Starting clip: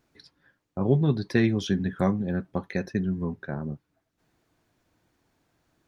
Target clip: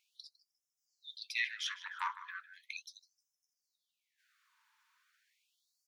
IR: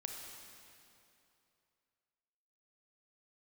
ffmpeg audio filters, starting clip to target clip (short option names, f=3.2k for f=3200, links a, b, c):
-filter_complex "[0:a]bass=f=250:g=5,treble=f=4k:g=-5,asplit=2[a][b];[b]adelay=154,lowpass=f=5k:p=1,volume=-14.5dB,asplit=2[c][d];[d]adelay=154,lowpass=f=5k:p=1,volume=0.47,asplit=2[e][f];[f]adelay=154,lowpass=f=5k:p=1,volume=0.47,asplit=2[g][h];[h]adelay=154,lowpass=f=5k:p=1,volume=0.47[i];[a][c][e][g][i]amix=inputs=5:normalize=0,asettb=1/sr,asplit=3[j][k][l];[j]atrim=end=1.444[m];[k]atrim=start=1.44:end=2.52,asetpts=PTS-STARTPTS,afade=t=in:d=0.004:c=qsin,afade=t=out:st=1.076:d=0.004:c=qsin,aeval=exprs='(tanh(8.91*val(0)+0.6)-tanh(0.6))/8.91':c=same[n];[l]atrim=start=2.516[o];[m][n]acrossfade=d=0.004:c1=hsin:c2=qsin[p];[p][o]acrossfade=d=0.004:c1=qsin:c2=hsin,afftfilt=real='re*gte(b*sr/1024,830*pow(5100/830,0.5+0.5*sin(2*PI*0.37*pts/sr)))':imag='im*gte(b*sr/1024,830*pow(5100/830,0.5+0.5*sin(2*PI*0.37*pts/sr)))':win_size=1024:overlap=0.75,volume=3dB"